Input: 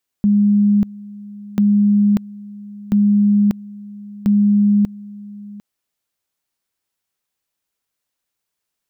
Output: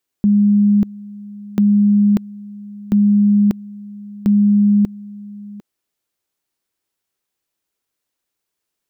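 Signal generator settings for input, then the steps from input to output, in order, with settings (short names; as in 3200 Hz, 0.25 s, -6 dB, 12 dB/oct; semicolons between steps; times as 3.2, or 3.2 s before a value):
two-level tone 205 Hz -10 dBFS, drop 21 dB, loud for 0.59 s, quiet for 0.75 s, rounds 4
bell 360 Hz +5.5 dB 0.77 oct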